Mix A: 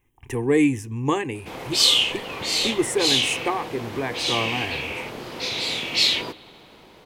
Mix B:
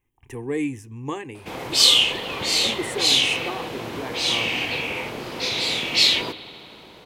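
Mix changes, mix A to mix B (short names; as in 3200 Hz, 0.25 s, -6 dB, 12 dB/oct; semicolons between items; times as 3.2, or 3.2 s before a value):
speech -7.5 dB; background: send +9.0 dB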